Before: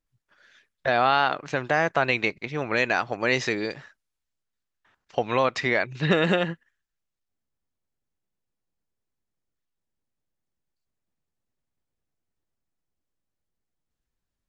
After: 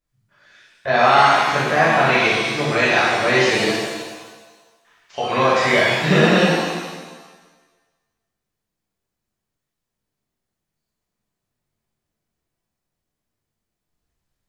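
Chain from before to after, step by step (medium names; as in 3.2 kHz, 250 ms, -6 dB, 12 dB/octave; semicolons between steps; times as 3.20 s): 3.73–5.29 s: tilt shelf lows -7 dB, about 1.1 kHz; pitch-shifted reverb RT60 1.3 s, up +7 st, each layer -8 dB, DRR -9.5 dB; trim -2.5 dB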